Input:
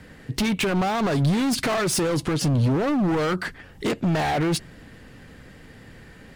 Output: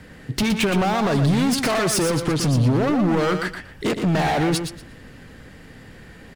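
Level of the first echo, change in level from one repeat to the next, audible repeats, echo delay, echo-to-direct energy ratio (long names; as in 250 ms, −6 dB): −7.5 dB, −14.0 dB, 2, 118 ms, −7.5 dB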